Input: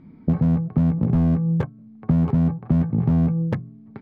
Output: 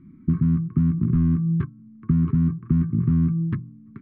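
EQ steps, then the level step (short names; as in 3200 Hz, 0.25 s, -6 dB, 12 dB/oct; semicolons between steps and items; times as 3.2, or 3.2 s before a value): elliptic band-stop 360–1100 Hz, stop band 40 dB; air absorption 470 m; 0.0 dB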